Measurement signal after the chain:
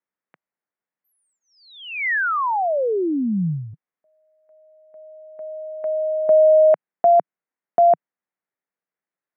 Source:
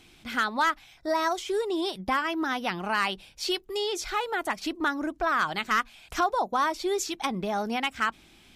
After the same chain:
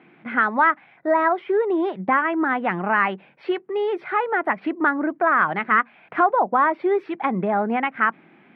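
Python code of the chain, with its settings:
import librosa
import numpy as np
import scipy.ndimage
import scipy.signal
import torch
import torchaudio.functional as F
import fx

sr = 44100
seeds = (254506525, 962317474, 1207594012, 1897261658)

y = scipy.signal.sosfilt(scipy.signal.ellip(3, 1.0, 50, [160.0, 2000.0], 'bandpass', fs=sr, output='sos'), x)
y = y * librosa.db_to_amplitude(8.0)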